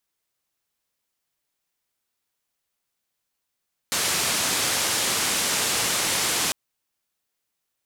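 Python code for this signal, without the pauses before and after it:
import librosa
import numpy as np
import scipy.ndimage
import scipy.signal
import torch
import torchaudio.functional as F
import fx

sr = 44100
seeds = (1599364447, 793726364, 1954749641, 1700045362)

y = fx.band_noise(sr, seeds[0], length_s=2.6, low_hz=90.0, high_hz=9500.0, level_db=-24.0)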